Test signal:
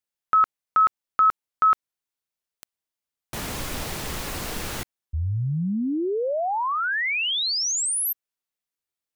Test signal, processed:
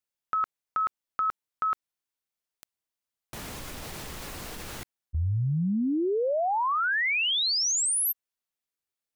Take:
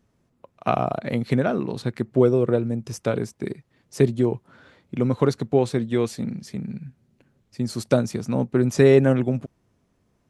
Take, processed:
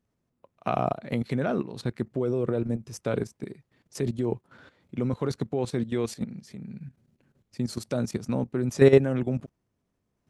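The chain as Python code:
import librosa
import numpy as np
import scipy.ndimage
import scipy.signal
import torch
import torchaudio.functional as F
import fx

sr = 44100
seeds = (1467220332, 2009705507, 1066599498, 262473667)

y = fx.level_steps(x, sr, step_db=13)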